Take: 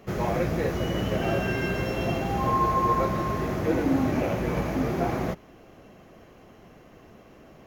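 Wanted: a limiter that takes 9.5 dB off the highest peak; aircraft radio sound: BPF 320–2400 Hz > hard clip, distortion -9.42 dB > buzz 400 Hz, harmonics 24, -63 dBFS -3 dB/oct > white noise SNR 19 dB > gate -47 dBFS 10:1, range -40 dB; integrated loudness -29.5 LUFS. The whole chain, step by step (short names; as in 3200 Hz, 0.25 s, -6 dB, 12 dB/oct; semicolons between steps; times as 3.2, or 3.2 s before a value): limiter -22 dBFS; BPF 320–2400 Hz; hard clip -33.5 dBFS; buzz 400 Hz, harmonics 24, -63 dBFS -3 dB/oct; white noise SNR 19 dB; gate -47 dBFS 10:1, range -40 dB; gain +7 dB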